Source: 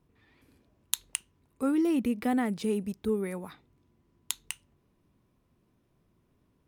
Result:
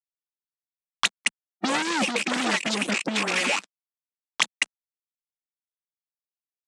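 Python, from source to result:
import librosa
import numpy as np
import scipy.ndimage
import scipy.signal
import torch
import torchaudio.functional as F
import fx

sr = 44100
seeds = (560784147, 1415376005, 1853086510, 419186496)

y = fx.rattle_buzz(x, sr, strikes_db=-45.0, level_db=-27.0)
y = y + 0.81 * np.pad(y, (int(3.6 * sr / 1000.0), 0))[:len(y)]
y = fx.dispersion(y, sr, late='highs', ms=120.0, hz=540.0)
y = fx.fuzz(y, sr, gain_db=34.0, gate_db=-41.0)
y = fx.hpss(y, sr, part='harmonic', gain_db=-18)
y = scipy.signal.sosfilt(scipy.signal.ellip(3, 1.0, 40, [200.0, 8200.0], 'bandpass', fs=sr, output='sos'), y)
y = fx.band_squash(y, sr, depth_pct=100)
y = F.gain(torch.from_numpy(y), 2.0).numpy()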